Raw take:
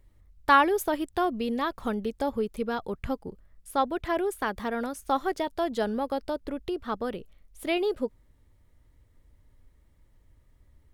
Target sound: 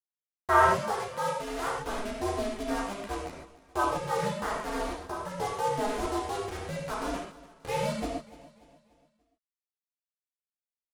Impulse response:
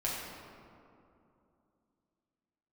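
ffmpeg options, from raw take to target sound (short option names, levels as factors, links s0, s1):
-filter_complex "[0:a]lowpass=1300,aemphasis=mode=production:type=riaa,acrusher=bits=5:mix=0:aa=0.000001,aecho=1:1:292|584|876|1168:0.119|0.0523|0.023|0.0101,asplit=3[s0][s1][s2];[s0]afade=t=out:st=4.81:d=0.02[s3];[s1]acompressor=threshold=0.0251:ratio=6,afade=t=in:st=4.81:d=0.02,afade=t=out:st=5.31:d=0.02[s4];[s2]afade=t=in:st=5.31:d=0.02[s5];[s3][s4][s5]amix=inputs=3:normalize=0,aeval=exprs='val(0)*sin(2*PI*200*n/s)':c=same,asettb=1/sr,asplit=3[s6][s7][s8];[s6]atrim=end=0.694[s9];[s7]atrim=start=0.69:end=1.67,asetpts=PTS-STARTPTS,afade=t=in:d=0.004:c=qsin,afade=t=out:st=0.976:d=0.004:c=qsin,lowshelf=f=250:g=-11.5[s10];[s8]atrim=start=1.666[s11];[s9][s10]acrossfade=d=0.004:c1=hsin:c2=qsin[s12];[s12][s11]acrossfade=d=0.004:c1=qsin:c2=hsin[s13];[1:a]atrim=start_sample=2205,atrim=end_sample=3528,asetrate=22932,aresample=44100[s14];[s13][s14]afir=irnorm=-1:irlink=0,volume=0.631"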